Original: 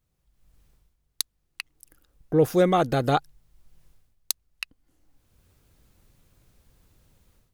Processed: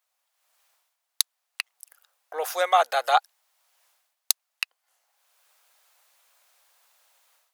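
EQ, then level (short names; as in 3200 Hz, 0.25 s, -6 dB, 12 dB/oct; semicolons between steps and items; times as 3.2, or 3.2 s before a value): steep high-pass 650 Hz 36 dB/oct; +5.0 dB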